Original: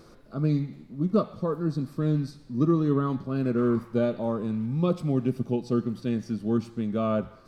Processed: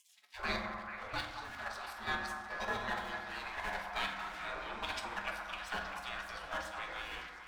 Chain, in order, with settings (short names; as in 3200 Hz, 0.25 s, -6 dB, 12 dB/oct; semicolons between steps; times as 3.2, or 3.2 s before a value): in parallel at 0 dB: compressor 16:1, threshold -34 dBFS, peak gain reduction 17.5 dB; on the sum: dynamic EQ 1500 Hz, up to +7 dB, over -47 dBFS, Q 1.3; de-hum 90.3 Hz, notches 10; crossover distortion -47 dBFS; high shelf 5300 Hz -10 dB; level quantiser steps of 11 dB; spectral gate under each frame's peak -30 dB weak; delay with a stepping band-pass 0.218 s, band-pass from 1000 Hz, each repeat 0.7 oct, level -4 dB; on a send at -1.5 dB: reverb RT60 1.3 s, pre-delay 5 ms; on the sum: gain +11 dB